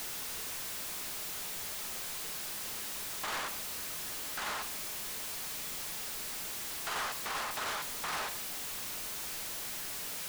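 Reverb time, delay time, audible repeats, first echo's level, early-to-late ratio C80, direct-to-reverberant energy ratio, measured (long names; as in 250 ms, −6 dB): 0.80 s, no echo audible, no echo audible, no echo audible, 17.0 dB, 9.0 dB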